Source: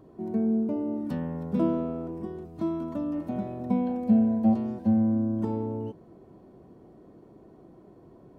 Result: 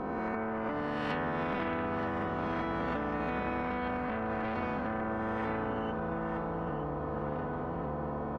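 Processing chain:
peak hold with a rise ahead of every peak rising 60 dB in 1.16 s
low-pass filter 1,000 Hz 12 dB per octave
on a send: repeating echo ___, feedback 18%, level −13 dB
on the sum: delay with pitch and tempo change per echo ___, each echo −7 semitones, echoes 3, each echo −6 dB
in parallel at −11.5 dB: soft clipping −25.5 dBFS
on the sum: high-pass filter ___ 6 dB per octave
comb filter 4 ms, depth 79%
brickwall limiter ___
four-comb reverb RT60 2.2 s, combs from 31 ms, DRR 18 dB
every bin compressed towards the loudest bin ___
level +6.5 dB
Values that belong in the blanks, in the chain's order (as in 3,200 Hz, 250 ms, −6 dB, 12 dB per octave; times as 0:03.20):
922 ms, 565 ms, 550 Hz, −25 dBFS, 4 to 1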